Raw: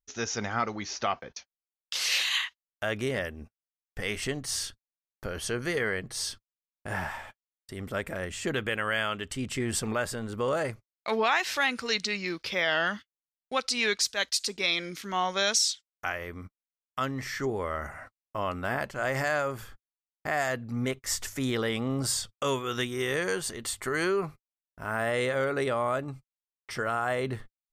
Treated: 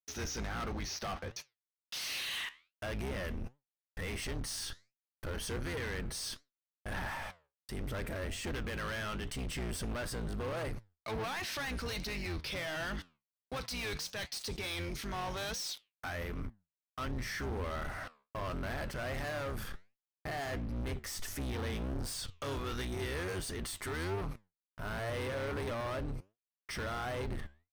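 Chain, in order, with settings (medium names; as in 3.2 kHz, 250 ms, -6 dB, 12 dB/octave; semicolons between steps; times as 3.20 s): octave divider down 2 oct, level +3 dB; waveshaping leveller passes 5; band-stop 7.2 kHz, Q 6.7; peak limiter -29.5 dBFS, peak gain reduction 20 dB; flange 1.4 Hz, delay 6.6 ms, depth 8.2 ms, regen +81%; gate with hold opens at -57 dBFS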